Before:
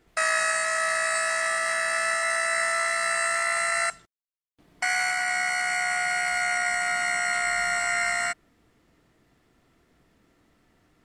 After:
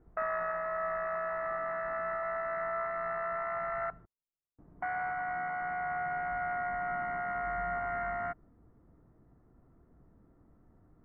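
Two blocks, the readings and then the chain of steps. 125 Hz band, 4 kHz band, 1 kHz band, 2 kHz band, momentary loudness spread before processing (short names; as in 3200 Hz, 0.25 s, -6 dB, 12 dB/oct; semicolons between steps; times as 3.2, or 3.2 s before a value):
n/a, under -35 dB, -5.5 dB, -14.5 dB, 1 LU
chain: LPF 1300 Hz 24 dB/oct; low shelf 210 Hz +11 dB; gain -4 dB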